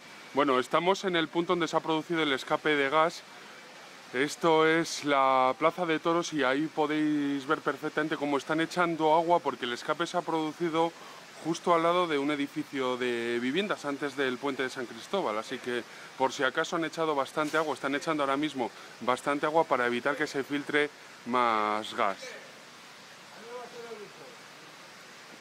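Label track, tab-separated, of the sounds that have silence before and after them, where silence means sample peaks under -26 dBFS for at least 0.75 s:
4.150000	22.120000	sound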